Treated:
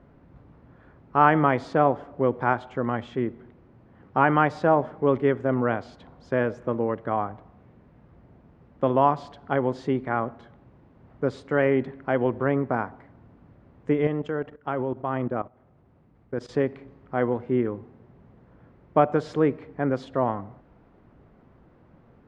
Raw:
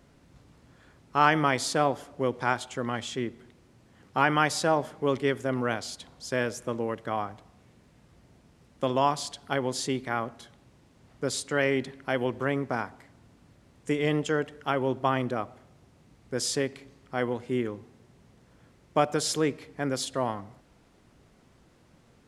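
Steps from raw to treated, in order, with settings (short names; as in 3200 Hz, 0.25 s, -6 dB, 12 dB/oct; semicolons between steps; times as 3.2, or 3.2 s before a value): LPF 1400 Hz 12 dB/oct; 14.07–16.49 level quantiser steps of 16 dB; gain +5 dB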